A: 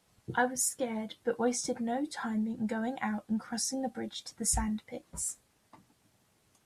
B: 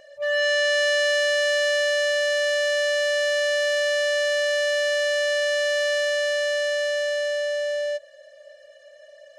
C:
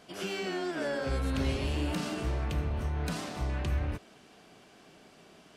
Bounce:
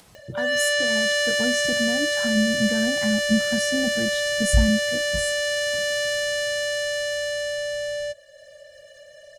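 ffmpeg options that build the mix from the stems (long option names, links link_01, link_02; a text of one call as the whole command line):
ffmpeg -i stem1.wav -i stem2.wav -filter_complex "[0:a]acrossover=split=410|3000[link_01][link_02][link_03];[link_02]acompressor=threshold=-36dB:ratio=6[link_04];[link_01][link_04][link_03]amix=inputs=3:normalize=0,volume=1dB[link_05];[1:a]highshelf=frequency=7500:gain=11.5,adelay=150,volume=-0.5dB[link_06];[link_05][link_06]amix=inputs=2:normalize=0,asubboost=boost=8:cutoff=240,acompressor=mode=upward:threshold=-40dB:ratio=2.5" out.wav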